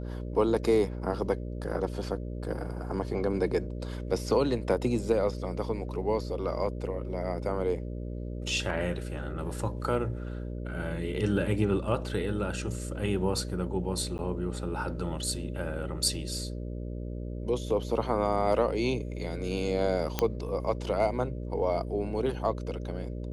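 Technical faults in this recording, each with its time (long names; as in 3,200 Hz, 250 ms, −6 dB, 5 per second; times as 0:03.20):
mains buzz 60 Hz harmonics 10 −36 dBFS
0:14.18–0:14.19: drop-out 9.4 ms
0:20.19: click −10 dBFS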